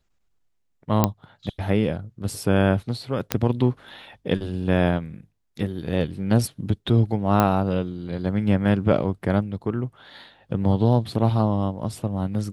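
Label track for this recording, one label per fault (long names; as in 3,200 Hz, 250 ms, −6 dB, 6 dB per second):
1.040000	1.040000	click −4 dBFS
3.320000	3.320000	click −4 dBFS
7.400000	7.400000	click −6 dBFS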